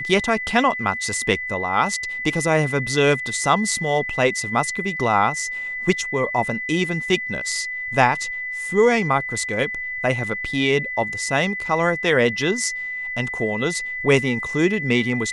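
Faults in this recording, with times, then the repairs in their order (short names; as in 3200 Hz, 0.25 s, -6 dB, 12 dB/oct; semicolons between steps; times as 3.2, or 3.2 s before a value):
tone 2000 Hz -26 dBFS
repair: notch 2000 Hz, Q 30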